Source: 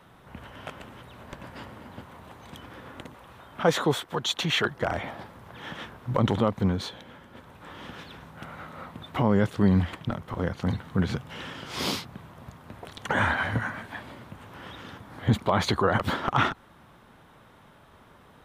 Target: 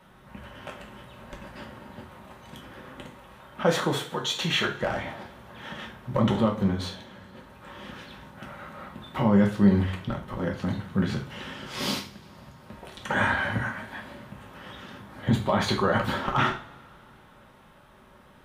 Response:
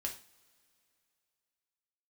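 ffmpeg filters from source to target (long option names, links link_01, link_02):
-filter_complex "[0:a]asettb=1/sr,asplit=3[link_01][link_02][link_03];[link_01]atrim=end=11.994[link_04];[link_02]atrim=start=11.99:end=12.62,asetpts=PTS-STARTPTS,afade=type=in:duration=0.004:curve=qsin,afade=type=out:start_time=0.626:duration=0.004:curve=qsin,acompressor=threshold=-43dB:ratio=6[link_05];[link_03]atrim=start=12.616[link_06];[link_04][link_05]acrossfade=duration=0.004:curve1=hsin:curve2=qsin[link_07];[link_07][link_06]acrossfade=duration=0.004:curve1=qsin:curve2=hsin[link_08];[1:a]atrim=start_sample=2205,asetrate=42336,aresample=44100[link_09];[link_08][link_09]afir=irnorm=-1:irlink=0"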